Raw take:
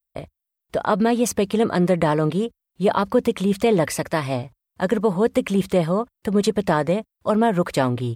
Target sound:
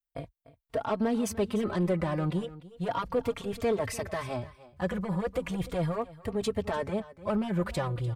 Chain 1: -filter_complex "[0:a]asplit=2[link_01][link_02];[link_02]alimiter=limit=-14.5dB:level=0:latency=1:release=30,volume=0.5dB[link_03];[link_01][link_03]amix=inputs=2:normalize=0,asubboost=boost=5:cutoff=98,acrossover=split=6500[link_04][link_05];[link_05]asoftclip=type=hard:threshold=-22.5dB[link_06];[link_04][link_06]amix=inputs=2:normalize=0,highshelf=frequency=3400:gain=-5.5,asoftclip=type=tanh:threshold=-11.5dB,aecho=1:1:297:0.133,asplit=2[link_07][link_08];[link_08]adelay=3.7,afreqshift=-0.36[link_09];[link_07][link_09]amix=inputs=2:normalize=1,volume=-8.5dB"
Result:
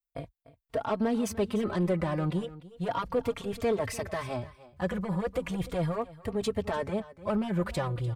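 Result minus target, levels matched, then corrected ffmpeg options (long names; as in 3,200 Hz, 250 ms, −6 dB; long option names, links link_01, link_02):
hard clipping: distortion +23 dB
-filter_complex "[0:a]asplit=2[link_01][link_02];[link_02]alimiter=limit=-14.5dB:level=0:latency=1:release=30,volume=0.5dB[link_03];[link_01][link_03]amix=inputs=2:normalize=0,asubboost=boost=5:cutoff=98,acrossover=split=6500[link_04][link_05];[link_05]asoftclip=type=hard:threshold=-13.5dB[link_06];[link_04][link_06]amix=inputs=2:normalize=0,highshelf=frequency=3400:gain=-5.5,asoftclip=type=tanh:threshold=-11.5dB,aecho=1:1:297:0.133,asplit=2[link_07][link_08];[link_08]adelay=3.7,afreqshift=-0.36[link_09];[link_07][link_09]amix=inputs=2:normalize=1,volume=-8.5dB"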